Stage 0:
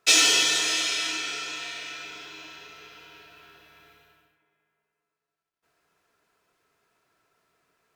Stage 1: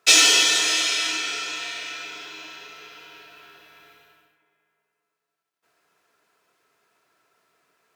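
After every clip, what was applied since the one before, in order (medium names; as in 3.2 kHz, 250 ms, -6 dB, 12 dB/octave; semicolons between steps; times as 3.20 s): high-pass 250 Hz 6 dB/octave; trim +4 dB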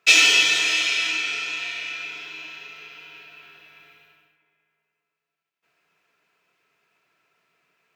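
fifteen-band graphic EQ 160 Hz +7 dB, 2.5 kHz +10 dB, 10 kHz -6 dB; trim -4.5 dB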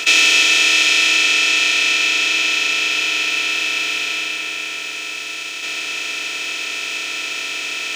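spectral levelling over time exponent 0.2; trim -2 dB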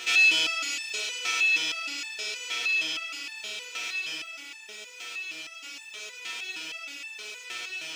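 resonator arpeggio 6.4 Hz 120–880 Hz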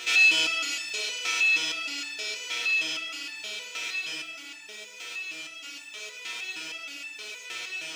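simulated room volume 430 m³, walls mixed, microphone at 0.55 m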